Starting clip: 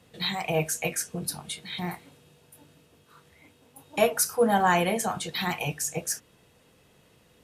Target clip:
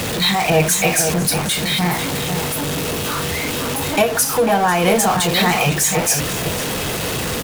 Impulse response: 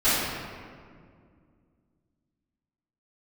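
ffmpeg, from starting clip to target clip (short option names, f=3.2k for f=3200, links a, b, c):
-filter_complex "[0:a]aeval=exprs='val(0)+0.5*0.0531*sgn(val(0))':c=same,asettb=1/sr,asplit=3[a][b][c];[a]atrim=end=4.014[d];[b]atrim=start=4.01:end=4.84,asetpts=PTS-STARTPTS,afade=t=in:d=0.004:c=qsin,afade=t=out:st=0.826:d=0.004:c=qsin,acompressor=threshold=-22dB:ratio=4[e];[c]atrim=start=4.836[f];[d][e]acrossfade=d=0.004:c1=hsin:c2=qsin[g];[g][f]acrossfade=d=0.004:c1=qsin:c2=hsin,asplit=2[h][i];[i]adelay=495.6,volume=-7dB,highshelf=f=4k:g=-11.2[j];[h][j]amix=inputs=2:normalize=0,volume=8.5dB"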